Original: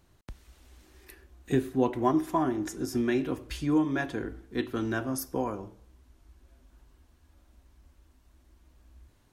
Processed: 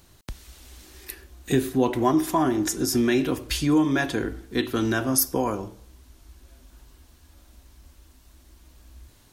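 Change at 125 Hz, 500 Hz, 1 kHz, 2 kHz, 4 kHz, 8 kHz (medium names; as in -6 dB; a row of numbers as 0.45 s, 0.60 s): +5.5 dB, +5.0 dB, +5.0 dB, +7.0 dB, +12.5 dB, +14.5 dB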